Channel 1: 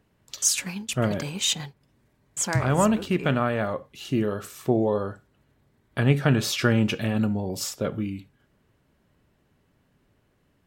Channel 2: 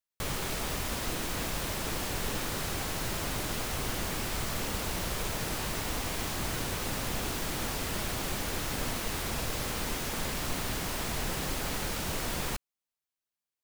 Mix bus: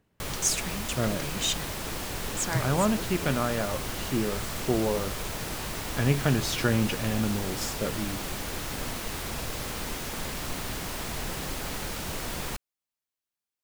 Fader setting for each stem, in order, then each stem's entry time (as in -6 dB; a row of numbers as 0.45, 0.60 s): -4.0, -0.5 dB; 0.00, 0.00 s